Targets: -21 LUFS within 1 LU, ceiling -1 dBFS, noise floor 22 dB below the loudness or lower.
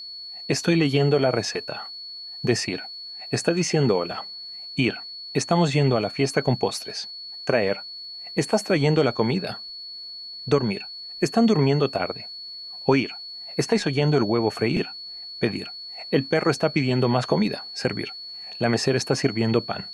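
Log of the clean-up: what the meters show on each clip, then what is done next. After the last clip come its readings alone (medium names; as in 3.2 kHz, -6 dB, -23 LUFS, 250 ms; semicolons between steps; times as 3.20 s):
tick rate 21 per s; steady tone 4.4 kHz; tone level -35 dBFS; loudness -24.0 LUFS; peak level -5.0 dBFS; loudness target -21.0 LUFS
-> de-click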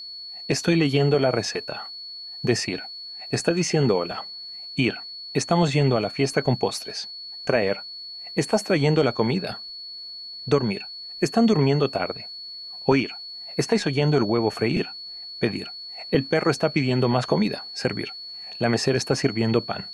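tick rate 0.10 per s; steady tone 4.4 kHz; tone level -35 dBFS
-> band-stop 4.4 kHz, Q 30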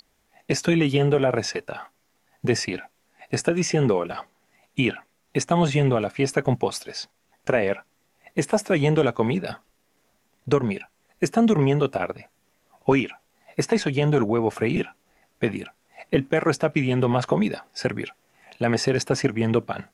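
steady tone not found; loudness -23.5 LUFS; peak level -5.5 dBFS; loudness target -21.0 LUFS
-> trim +2.5 dB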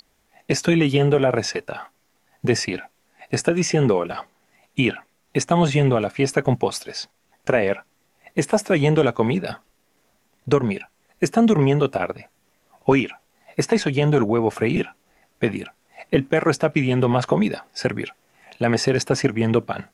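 loudness -21.5 LUFS; peak level -3.0 dBFS; noise floor -65 dBFS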